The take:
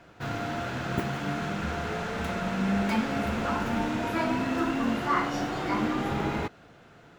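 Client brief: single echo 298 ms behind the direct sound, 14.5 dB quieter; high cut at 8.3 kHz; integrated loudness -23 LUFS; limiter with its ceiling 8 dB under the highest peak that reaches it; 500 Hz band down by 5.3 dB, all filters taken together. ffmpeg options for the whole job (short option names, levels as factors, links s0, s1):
-af "lowpass=8300,equalizer=f=500:t=o:g=-8,alimiter=limit=0.0708:level=0:latency=1,aecho=1:1:298:0.188,volume=2.99"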